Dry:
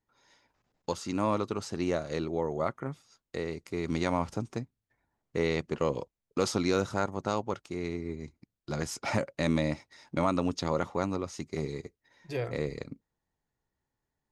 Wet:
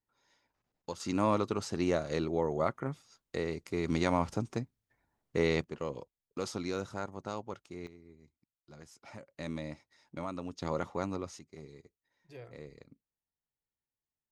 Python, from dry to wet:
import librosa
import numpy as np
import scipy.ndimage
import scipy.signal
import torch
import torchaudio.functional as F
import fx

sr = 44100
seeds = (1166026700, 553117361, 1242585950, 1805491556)

y = fx.gain(x, sr, db=fx.steps((0.0, -7.5), (1.0, 0.0), (5.64, -8.5), (7.87, -19.5), (9.31, -11.5), (10.62, -4.5), (11.39, -15.5)))